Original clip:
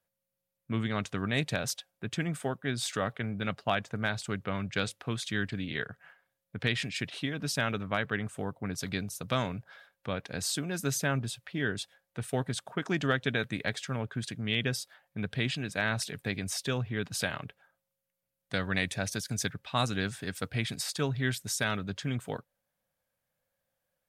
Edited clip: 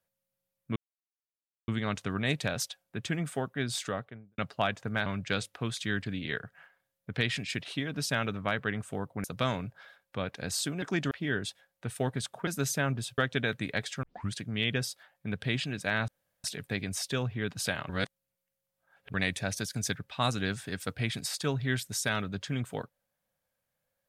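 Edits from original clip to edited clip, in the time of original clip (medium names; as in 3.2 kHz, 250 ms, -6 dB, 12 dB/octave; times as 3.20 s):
0.76 s: insert silence 0.92 s
2.80–3.46 s: studio fade out
4.14–4.52 s: delete
8.70–9.15 s: delete
10.73–11.44 s: swap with 12.80–13.09 s
13.94 s: tape start 0.29 s
15.99 s: insert room tone 0.36 s
17.44–18.69 s: reverse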